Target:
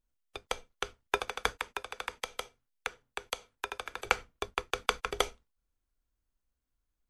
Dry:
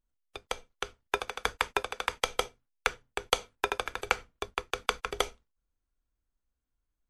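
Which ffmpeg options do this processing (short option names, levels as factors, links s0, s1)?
-filter_complex "[0:a]asettb=1/sr,asplit=3[s0][s1][s2];[s0]atrim=end=1.514[s3];[s1]atrim=start=1.51:end=4.05,asetpts=PTS-STARTPTS,afade=t=in:d=0.004:c=qsin,afade=t=out:st=2.536:d=0.004:c=qsin,acrossover=split=170|480|970[s4][s5][s6][s7];[s4]acompressor=threshold=0.00126:ratio=4[s8];[s5]acompressor=threshold=0.00316:ratio=4[s9];[s6]acompressor=threshold=0.00631:ratio=4[s10];[s7]acompressor=threshold=0.0158:ratio=4[s11];[s8][s9][s10][s11]amix=inputs=4:normalize=0[s12];[s2]atrim=start=4.046[s13];[s3][s12]acrossfade=d=0.004:c1=hsin:c2=qsin[s14];[s14][s13]acrossfade=d=0.004:c1=qsin:c2=hsin"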